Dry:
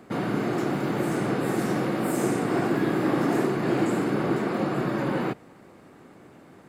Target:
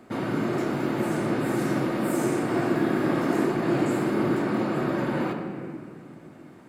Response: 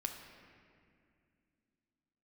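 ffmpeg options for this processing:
-filter_complex "[0:a]asettb=1/sr,asplit=3[a][b][c];[a]atrim=end=3.904[d];[b]atrim=start=3.9:end=4.39,asetpts=PTS-STARTPTS,afade=t=in:d=0.004:c=qsin,afade=t=out:st=0.486:d=0.004:c=qsin,highshelf=f=11k:g=5.5[e];[c]atrim=start=4.386[f];[d][e]acrossfade=d=0.004:c1=hsin:c2=qsin[g];[g][f]acrossfade=d=0.004:c1=qsin:c2=hsin[h];[1:a]atrim=start_sample=2205[i];[h][i]afir=irnorm=-1:irlink=0"

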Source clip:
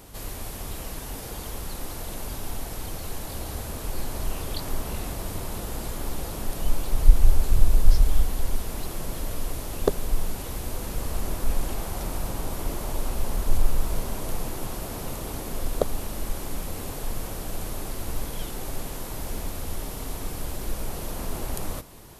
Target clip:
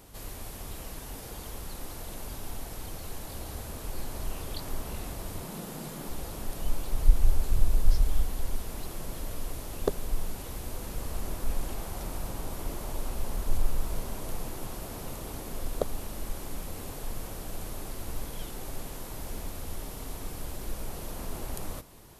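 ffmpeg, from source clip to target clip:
-filter_complex "[0:a]asettb=1/sr,asplit=3[a][b][c];[a]atrim=end=5.424[d];[b]atrim=start=5.42:end=6.09,asetpts=PTS-STARTPTS,afade=t=in:d=0.004:c=qsin,afade=t=out:st=0.666:d=0.004:c=qsin,lowshelf=f=110:t=q:w=3:g=-12.5[e];[c]atrim=start=6.086[f];[d][e]acrossfade=d=0.004:c1=hsin:c2=qsin[g];[g][f]acrossfade=d=0.004:c1=qsin:c2=hsin,volume=-5.5dB"

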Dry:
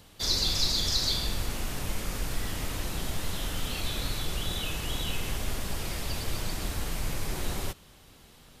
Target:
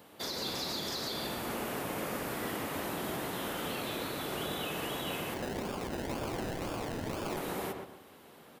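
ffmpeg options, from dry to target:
-filter_complex "[0:a]highpass=260,equalizer=f=5.7k:w=0.49:g=-13,alimiter=level_in=7.5dB:limit=-24dB:level=0:latency=1:release=179,volume=-7.5dB,asettb=1/sr,asplit=3[a][b][c];[a]atrim=end=5.344[d];[b]atrim=start=5.34:end=7.37,asetpts=PTS-STARTPTS,afade=t=in:d=0.004:c=qsin,afade=t=out:st=2.026:d=0.004:c=qsin,acrusher=samples=31:mix=1:aa=0.000001:lfo=1:lforange=18.6:lforate=2[e];[c]atrim=start=7.366[f];[d][e]acrossfade=d=0.004:c1=hsin:c2=qsin[g];[g][f]acrossfade=d=0.004:c1=qsin:c2=hsin,asplit=2[h][i];[i]adelay=122,lowpass=f=1.9k:p=1,volume=-3.5dB,asplit=2[j][k];[k]adelay=122,lowpass=f=1.9k:p=1,volume=0.34,asplit=2[l][m];[m]adelay=122,lowpass=f=1.9k:p=1,volume=0.34,asplit=2[n][o];[o]adelay=122,lowpass=f=1.9k:p=1,volume=0.34[p];[h][j][l][n][p]amix=inputs=5:normalize=0,volume=4.5dB"

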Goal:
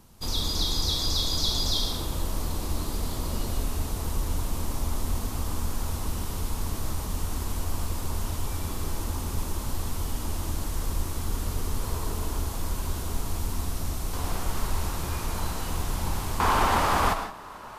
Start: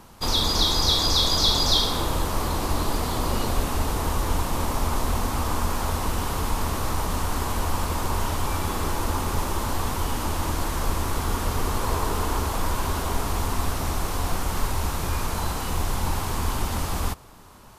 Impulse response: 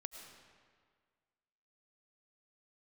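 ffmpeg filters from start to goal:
-filter_complex "[0:a]asetnsamples=n=441:p=0,asendcmd='14.13 equalizer g -2.5;16.4 equalizer g 14',equalizer=f=1.1k:w=0.35:g=-9[a];[1:a]atrim=start_sample=2205,afade=t=out:st=0.23:d=0.01,atrim=end_sample=10584[b];[a][b]afir=irnorm=-1:irlink=0,volume=1.5dB"

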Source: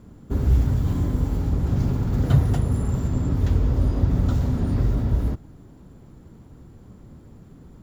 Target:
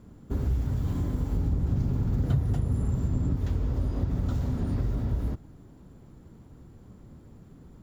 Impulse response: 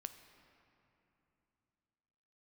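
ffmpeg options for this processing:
-filter_complex "[0:a]asettb=1/sr,asplit=3[a][b][c];[a]atrim=end=1.334[d];[b]atrim=start=1.33:end=3.37,asetpts=PTS-STARTPTS,afade=t=in:d=0.004:c=qsin,afade=t=out:st=2.036:d=0.004:c=qsin,lowshelf=f=370:g=6[e];[c]atrim=start=3.366[f];[d][e]acrossfade=d=0.004:c1=hsin:c2=qsin[g];[g][f]acrossfade=d=0.004:c1=qsin:c2=hsin,acompressor=threshold=-20dB:ratio=3,volume=-4dB"

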